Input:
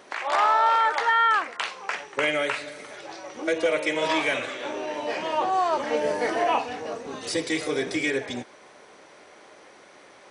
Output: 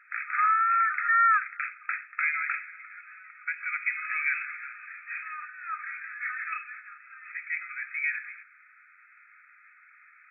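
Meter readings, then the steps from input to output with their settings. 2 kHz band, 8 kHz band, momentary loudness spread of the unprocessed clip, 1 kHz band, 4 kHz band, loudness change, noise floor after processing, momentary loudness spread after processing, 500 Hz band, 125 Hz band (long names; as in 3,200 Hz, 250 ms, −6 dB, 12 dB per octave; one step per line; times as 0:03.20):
0.0 dB, below −40 dB, 14 LU, −5.0 dB, below −40 dB, −3.5 dB, −57 dBFS, 21 LU, below −40 dB, below −40 dB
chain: linear-phase brick-wall band-pass 1,200–2,600 Hz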